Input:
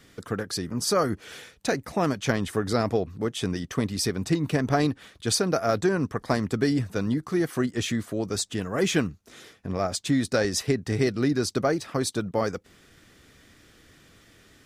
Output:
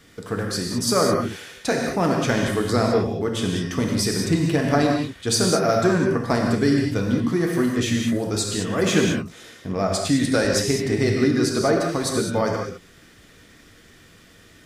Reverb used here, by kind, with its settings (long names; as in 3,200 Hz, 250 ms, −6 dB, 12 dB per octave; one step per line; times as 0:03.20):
reverb whose tail is shaped and stops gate 230 ms flat, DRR 0 dB
level +2 dB